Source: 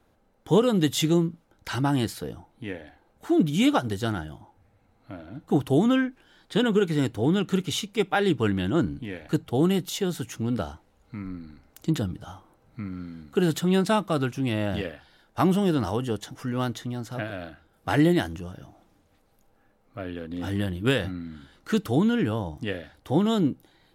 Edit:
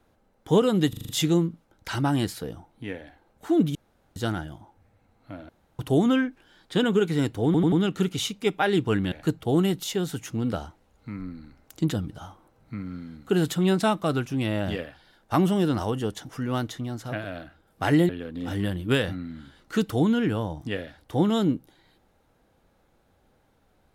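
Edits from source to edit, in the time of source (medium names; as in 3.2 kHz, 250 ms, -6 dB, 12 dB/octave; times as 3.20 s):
0.89 s: stutter 0.04 s, 6 plays
3.55–3.96 s: room tone
5.29–5.59 s: room tone
7.25 s: stutter 0.09 s, 4 plays
8.65–9.18 s: delete
18.15–20.05 s: delete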